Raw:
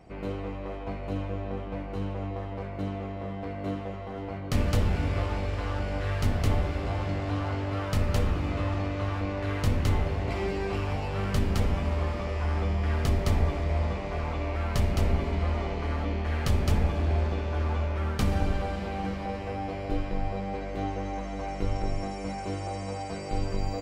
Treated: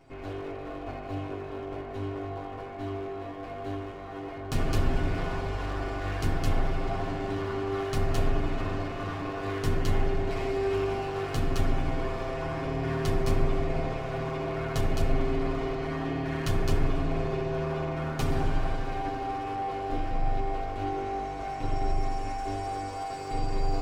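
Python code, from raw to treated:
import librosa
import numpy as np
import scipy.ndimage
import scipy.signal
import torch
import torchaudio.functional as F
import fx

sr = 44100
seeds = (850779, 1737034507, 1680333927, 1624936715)

y = fx.lower_of_two(x, sr, delay_ms=7.5)
y = y + 0.39 * np.pad(y, (int(2.8 * sr / 1000.0), 0))[:len(y)]
y = fx.echo_bbd(y, sr, ms=84, stages=1024, feedback_pct=75, wet_db=-6.0)
y = F.gain(torch.from_numpy(y), -2.0).numpy()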